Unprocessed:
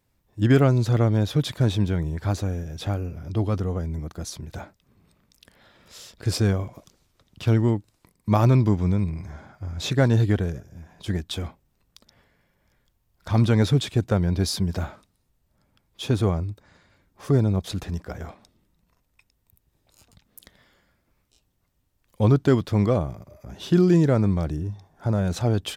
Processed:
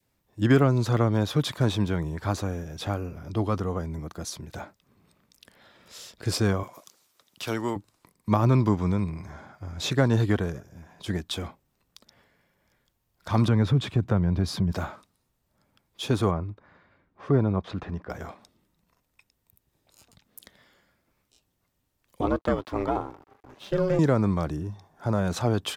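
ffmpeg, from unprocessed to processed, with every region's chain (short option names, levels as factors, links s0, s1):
-filter_complex "[0:a]asettb=1/sr,asplit=3[s0][s1][s2];[s0]atrim=end=6.634[s3];[s1]atrim=start=6.63:end=7.76,asetpts=PTS-STARTPTS,afade=t=in:d=0.004:c=qsin,afade=t=out:st=1.126:d=0.004:c=qsin,highpass=f=530:p=1,highshelf=f=5700:g=9[s4];[s2]atrim=start=7.756[s5];[s3][s4]acrossfade=d=0.004:c1=hsin:c2=qsin[s6];[s6][s5]acrossfade=d=0.004:c1=qsin:c2=hsin,asettb=1/sr,asplit=3[s7][s8][s9];[s7]atrim=end=13.484[s10];[s8]atrim=start=13.48:end=14.72,asetpts=PTS-STARTPTS,afade=t=in:d=0.004:c=qsin,afade=t=out:st=1.236:d=0.004:c=qsin,highpass=54,bass=f=250:g=10,treble=f=4000:g=-10,acompressor=threshold=0.126:ratio=2.5:attack=3.2:release=140:knee=1:detection=peak[s11];[s9]atrim=start=14.716[s12];[s10][s11]acrossfade=d=0.004:c1=hsin:c2=qsin[s13];[s13][s12]acrossfade=d=0.004:c1=qsin:c2=hsin,asettb=1/sr,asplit=3[s14][s15][s16];[s14]atrim=end=16.314[s17];[s15]atrim=start=16.31:end=18.1,asetpts=PTS-STARTPTS,afade=t=in:d=0.004:c=qsin,afade=t=out:st=1.786:d=0.004:c=qsin,lowpass=2300,bandreject=f=880:w=29[s18];[s16]atrim=start=18.096[s19];[s17][s18]acrossfade=d=0.004:c1=hsin:c2=qsin[s20];[s20][s19]acrossfade=d=0.004:c1=qsin:c2=hsin,asettb=1/sr,asplit=3[s21][s22][s23];[s21]atrim=end=22.214[s24];[s22]atrim=start=22.21:end=23.99,asetpts=PTS-STARTPTS,afade=t=in:d=0.004:c=qsin,afade=t=out:st=1.776:d=0.004:c=qsin,bass=f=250:g=-5,treble=f=4000:g=-8,aeval=exprs='val(0)*sin(2*PI*190*n/s)':c=same,aeval=exprs='sgn(val(0))*max(abs(val(0))-0.00178,0)':c=same[s25];[s23]atrim=start=23.986[s26];[s24][s25]acrossfade=d=0.004:c1=hsin:c2=qsin[s27];[s27][s26]acrossfade=d=0.004:c1=qsin:c2=hsin,adynamicequalizer=threshold=0.00631:dfrequency=1100:dqfactor=2:tfrequency=1100:tqfactor=2:attack=5:release=100:ratio=0.375:range=3.5:mode=boostabove:tftype=bell,acrossover=split=420[s28][s29];[s29]acompressor=threshold=0.0708:ratio=6[s30];[s28][s30]amix=inputs=2:normalize=0,lowshelf=f=88:g=-11"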